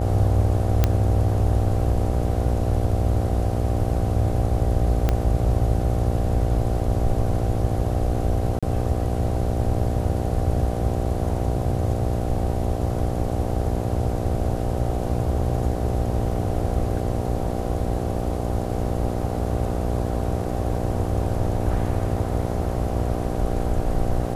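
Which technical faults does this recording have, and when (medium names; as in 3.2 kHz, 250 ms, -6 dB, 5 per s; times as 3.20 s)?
buzz 60 Hz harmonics 13 -27 dBFS
0.84 s: pop -5 dBFS
5.09 s: pop -8 dBFS
8.59–8.63 s: dropout 36 ms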